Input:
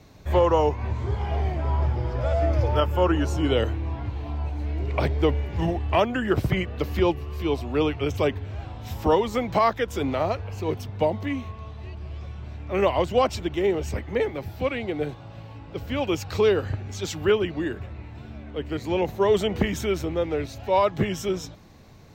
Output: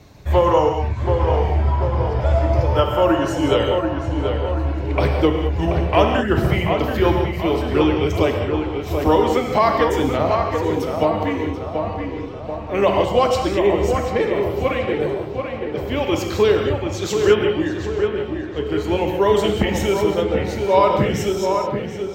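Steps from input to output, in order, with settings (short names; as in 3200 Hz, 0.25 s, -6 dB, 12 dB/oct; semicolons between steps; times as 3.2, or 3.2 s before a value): reverb removal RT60 0.63 s; on a send: tape echo 0.733 s, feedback 61%, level -4 dB, low-pass 2000 Hz; on the sum: non-linear reverb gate 0.23 s flat, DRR 2.5 dB; gain +4 dB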